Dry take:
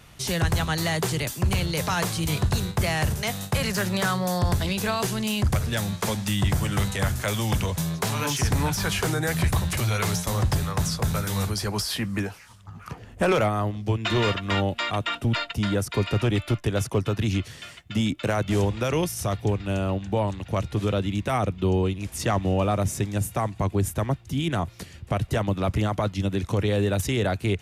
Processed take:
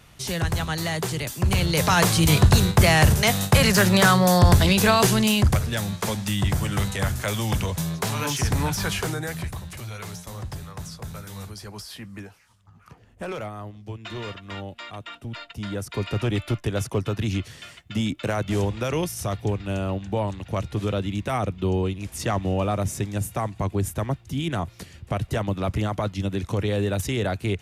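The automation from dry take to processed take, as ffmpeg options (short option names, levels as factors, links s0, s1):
-af "volume=7.94,afade=t=in:st=1.27:d=0.89:silence=0.334965,afade=t=out:st=5.14:d=0.53:silence=0.398107,afade=t=out:st=8.85:d=0.7:silence=0.281838,afade=t=in:st=15.37:d=0.97:silence=0.316228"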